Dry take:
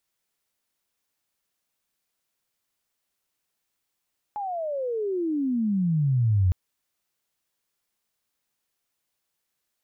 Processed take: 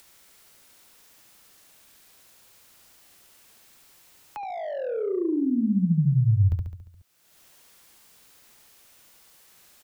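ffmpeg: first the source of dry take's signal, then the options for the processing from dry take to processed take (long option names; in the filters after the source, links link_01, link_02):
-f lavfi -i "aevalsrc='pow(10,(-28+11*t/2.16)/20)*sin(2*PI*850*2.16/log(87/850)*(exp(log(87/850)*t/2.16)-1))':duration=2.16:sample_rate=44100"
-filter_complex "[0:a]aecho=1:1:70|140|210|280|350|420|490:0.631|0.341|0.184|0.0994|0.0537|0.029|0.0156,acrossover=split=120|180|450[link_01][link_02][link_03][link_04];[link_04]asoftclip=type=tanh:threshold=-33dB[link_05];[link_01][link_02][link_03][link_05]amix=inputs=4:normalize=0,acompressor=mode=upward:threshold=-37dB:ratio=2.5"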